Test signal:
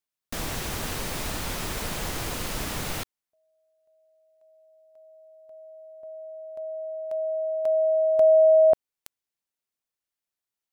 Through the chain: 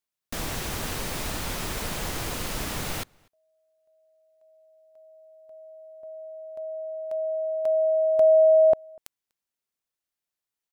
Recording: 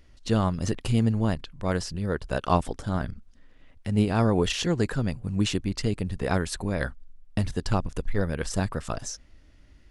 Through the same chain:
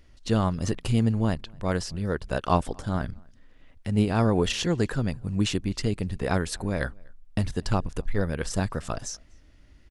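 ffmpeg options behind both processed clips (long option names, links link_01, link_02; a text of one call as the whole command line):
ffmpeg -i in.wav -filter_complex "[0:a]asplit=2[link_01][link_02];[link_02]adelay=244.9,volume=-29dB,highshelf=frequency=4000:gain=-5.51[link_03];[link_01][link_03]amix=inputs=2:normalize=0" out.wav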